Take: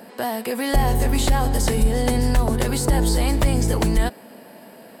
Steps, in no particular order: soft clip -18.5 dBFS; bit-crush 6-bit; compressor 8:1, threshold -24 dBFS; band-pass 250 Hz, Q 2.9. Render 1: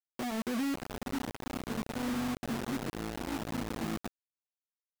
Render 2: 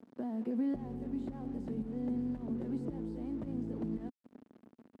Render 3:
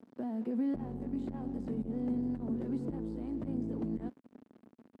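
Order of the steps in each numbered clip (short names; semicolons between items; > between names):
compressor > soft clip > band-pass > bit-crush; compressor > bit-crush > soft clip > band-pass; bit-crush > soft clip > compressor > band-pass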